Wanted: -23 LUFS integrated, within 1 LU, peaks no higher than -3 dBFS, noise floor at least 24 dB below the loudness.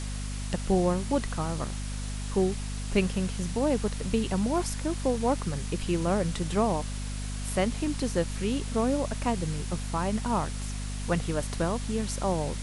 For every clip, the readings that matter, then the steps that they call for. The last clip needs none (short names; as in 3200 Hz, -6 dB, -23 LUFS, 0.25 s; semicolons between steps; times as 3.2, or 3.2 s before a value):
hum 50 Hz; harmonics up to 250 Hz; hum level -31 dBFS; noise floor -34 dBFS; noise floor target -54 dBFS; loudness -29.5 LUFS; peak -11.0 dBFS; loudness target -23.0 LUFS
-> de-hum 50 Hz, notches 5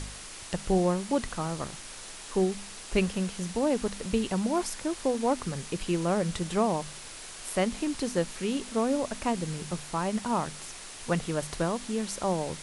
hum none; noise floor -44 dBFS; noise floor target -54 dBFS
-> noise print and reduce 10 dB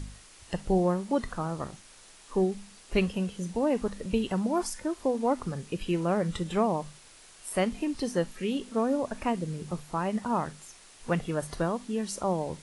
noise floor -54 dBFS; noise floor target -55 dBFS
-> noise print and reduce 6 dB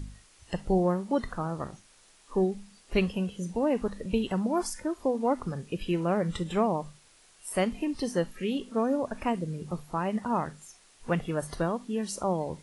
noise floor -60 dBFS; loudness -30.5 LUFS; peak -13.0 dBFS; loudness target -23.0 LUFS
-> gain +7.5 dB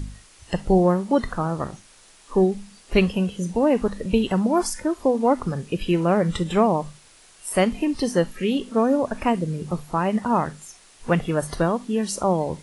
loudness -23.0 LUFS; peak -5.5 dBFS; noise floor -52 dBFS